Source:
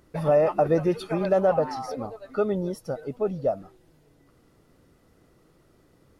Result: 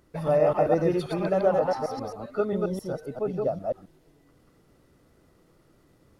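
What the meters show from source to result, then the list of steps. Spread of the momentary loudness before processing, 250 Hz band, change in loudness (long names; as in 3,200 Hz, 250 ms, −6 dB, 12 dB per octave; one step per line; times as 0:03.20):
12 LU, −1.0 dB, −1.0 dB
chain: delay that plays each chunk backwards 133 ms, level −1.5 dB
level −3 dB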